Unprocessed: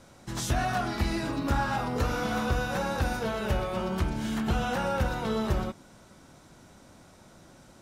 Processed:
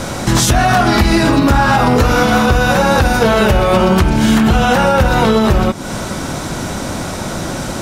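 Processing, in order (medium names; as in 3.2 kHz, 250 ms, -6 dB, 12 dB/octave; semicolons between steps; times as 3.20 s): rattle on loud lows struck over -29 dBFS, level -38 dBFS; compression 6:1, threshold -40 dBFS, peak gain reduction 17 dB; loudness maximiser +33.5 dB; trim -1.5 dB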